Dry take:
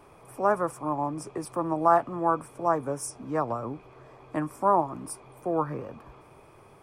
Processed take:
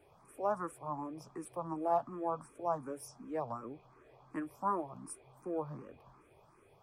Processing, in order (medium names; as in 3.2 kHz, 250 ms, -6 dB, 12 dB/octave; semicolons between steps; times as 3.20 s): barber-pole phaser +2.7 Hz; trim -8 dB